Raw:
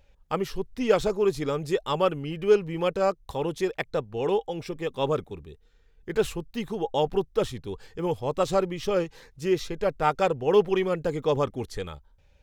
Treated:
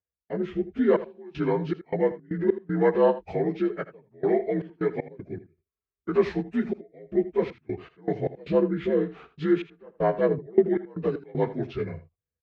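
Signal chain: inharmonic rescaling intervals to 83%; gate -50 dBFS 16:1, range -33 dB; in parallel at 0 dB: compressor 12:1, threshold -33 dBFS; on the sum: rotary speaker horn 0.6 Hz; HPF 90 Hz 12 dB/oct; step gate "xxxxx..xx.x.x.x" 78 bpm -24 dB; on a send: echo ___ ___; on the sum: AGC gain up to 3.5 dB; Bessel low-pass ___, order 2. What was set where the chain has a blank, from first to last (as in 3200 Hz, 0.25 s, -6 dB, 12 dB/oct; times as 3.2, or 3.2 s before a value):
80 ms, -15 dB, 2000 Hz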